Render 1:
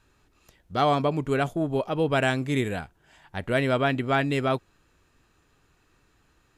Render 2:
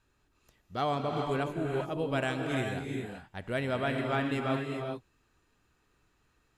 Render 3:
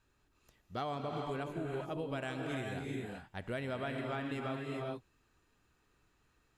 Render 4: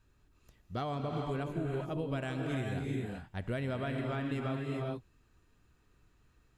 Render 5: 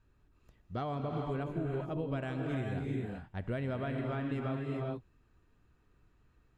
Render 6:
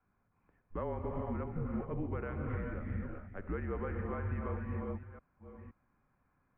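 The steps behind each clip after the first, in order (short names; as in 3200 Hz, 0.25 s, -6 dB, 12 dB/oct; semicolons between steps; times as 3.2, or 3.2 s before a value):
non-linear reverb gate 0.44 s rising, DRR 2.5 dB; gain -8.5 dB
compressor, threshold -33 dBFS, peak gain reduction 8 dB; gain -2 dB
low shelf 220 Hz +9.5 dB; notch 830 Hz, Q 19
high shelf 3700 Hz -11.5 dB
reverse delay 0.519 s, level -13 dB; mistuned SSB -180 Hz 170–2300 Hz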